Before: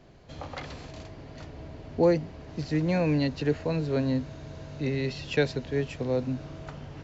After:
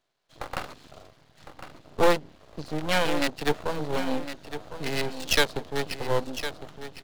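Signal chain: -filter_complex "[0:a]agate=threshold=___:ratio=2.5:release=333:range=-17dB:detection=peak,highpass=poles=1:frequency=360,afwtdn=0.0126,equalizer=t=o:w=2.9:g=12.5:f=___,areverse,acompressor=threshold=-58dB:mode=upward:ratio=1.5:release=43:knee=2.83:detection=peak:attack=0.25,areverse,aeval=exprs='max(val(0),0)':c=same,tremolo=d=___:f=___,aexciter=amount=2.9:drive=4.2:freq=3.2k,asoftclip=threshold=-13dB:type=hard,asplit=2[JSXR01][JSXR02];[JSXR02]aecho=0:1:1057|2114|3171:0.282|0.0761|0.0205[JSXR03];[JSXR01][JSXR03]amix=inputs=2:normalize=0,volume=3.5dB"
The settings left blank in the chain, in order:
-40dB, 1.5k, 0.31, 3.4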